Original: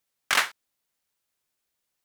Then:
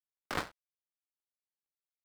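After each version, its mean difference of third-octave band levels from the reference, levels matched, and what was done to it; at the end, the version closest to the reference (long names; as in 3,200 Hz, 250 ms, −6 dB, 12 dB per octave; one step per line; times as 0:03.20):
8.5 dB: gap after every zero crossing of 0.23 ms
low-pass filter 1,300 Hz 6 dB per octave
level +2 dB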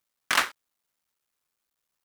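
2.0 dB: sub-harmonics by changed cycles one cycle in 3, muted
parametric band 1,200 Hz +4 dB 0.63 octaves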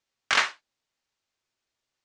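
4.5 dB: low-pass filter 6,700 Hz 24 dB per octave
reverb whose tail is shaped and stops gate 110 ms falling, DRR 8 dB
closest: second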